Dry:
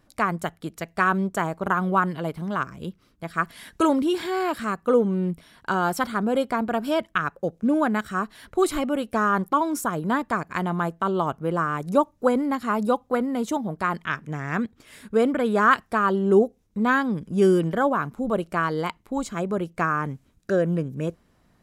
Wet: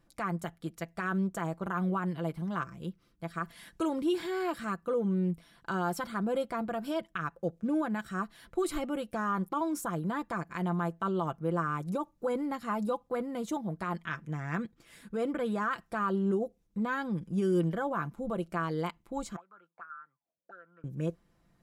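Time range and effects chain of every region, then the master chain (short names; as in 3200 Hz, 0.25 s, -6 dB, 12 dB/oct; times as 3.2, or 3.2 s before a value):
19.36–20.84 HPF 60 Hz + auto-wah 490–1400 Hz, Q 20, up, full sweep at -23 dBFS + three-band squash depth 70%
whole clip: limiter -15 dBFS; low shelf 220 Hz +3 dB; comb 5.9 ms, depth 48%; gain -9 dB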